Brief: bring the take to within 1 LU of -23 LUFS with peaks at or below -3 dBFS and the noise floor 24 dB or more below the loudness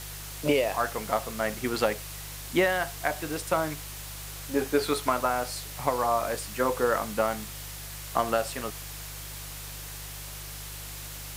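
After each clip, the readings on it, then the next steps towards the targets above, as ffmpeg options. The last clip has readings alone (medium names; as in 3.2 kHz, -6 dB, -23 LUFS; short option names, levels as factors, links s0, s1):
hum 50 Hz; highest harmonic 150 Hz; hum level -41 dBFS; noise floor -40 dBFS; noise floor target -54 dBFS; loudness -30.0 LUFS; peak level -9.5 dBFS; loudness target -23.0 LUFS
-> -af "bandreject=f=50:t=h:w=4,bandreject=f=100:t=h:w=4,bandreject=f=150:t=h:w=4"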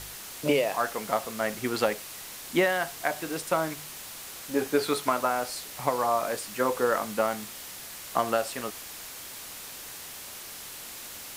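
hum not found; noise floor -42 dBFS; noise floor target -54 dBFS
-> -af "afftdn=nr=12:nf=-42"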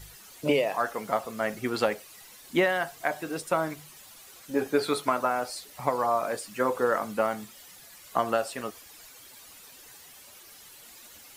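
noise floor -51 dBFS; noise floor target -53 dBFS
-> -af "afftdn=nr=6:nf=-51"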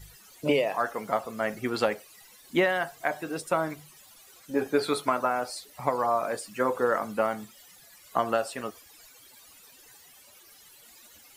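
noise floor -54 dBFS; loudness -29.0 LUFS; peak level -9.5 dBFS; loudness target -23.0 LUFS
-> -af "volume=2"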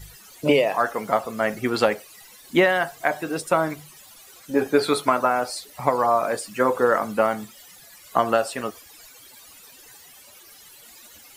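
loudness -23.0 LUFS; peak level -3.5 dBFS; noise floor -48 dBFS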